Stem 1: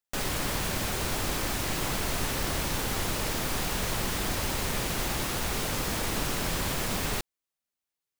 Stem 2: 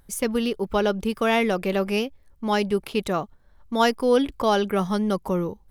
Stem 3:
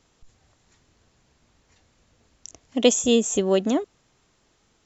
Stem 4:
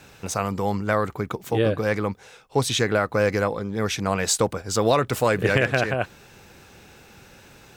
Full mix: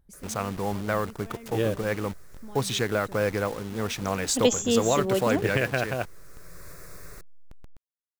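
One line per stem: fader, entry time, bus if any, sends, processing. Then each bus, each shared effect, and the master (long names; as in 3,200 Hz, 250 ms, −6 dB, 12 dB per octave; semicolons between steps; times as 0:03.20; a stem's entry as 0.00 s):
−13.5 dB, 0.00 s, no send, parametric band 170 Hz +9.5 dB 0.31 octaves; phaser with its sweep stopped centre 830 Hz, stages 6; automatic ducking −11 dB, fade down 0.25 s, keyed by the fourth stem
−17.0 dB, 0.00 s, no send, low-shelf EQ 490 Hz +9.5 dB; brickwall limiter −20.5 dBFS, peak gain reduction 17 dB
−5.0 dB, 1.60 s, no send, no processing
−4.5 dB, 0.00 s, no send, hold until the input has moved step −31 dBFS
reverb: not used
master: no processing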